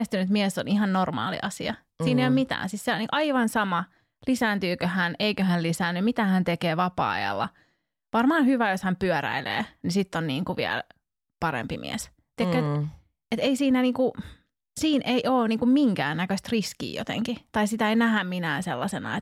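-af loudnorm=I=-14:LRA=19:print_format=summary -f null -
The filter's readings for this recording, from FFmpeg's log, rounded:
Input Integrated:    -25.8 LUFS
Input True Peak:     -12.2 dBTP
Input LRA:             2.4 LU
Input Threshold:     -36.0 LUFS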